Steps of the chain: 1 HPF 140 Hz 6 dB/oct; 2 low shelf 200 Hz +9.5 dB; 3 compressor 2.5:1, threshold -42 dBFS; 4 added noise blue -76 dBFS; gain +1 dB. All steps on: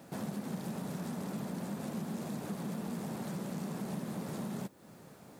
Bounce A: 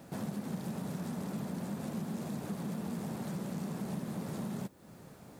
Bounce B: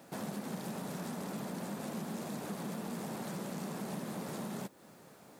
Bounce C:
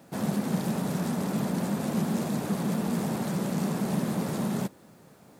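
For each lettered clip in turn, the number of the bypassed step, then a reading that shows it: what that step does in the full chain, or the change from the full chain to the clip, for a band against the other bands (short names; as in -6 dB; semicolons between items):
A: 1, 125 Hz band +2.5 dB; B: 2, 125 Hz band -5.0 dB; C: 3, mean gain reduction 8.5 dB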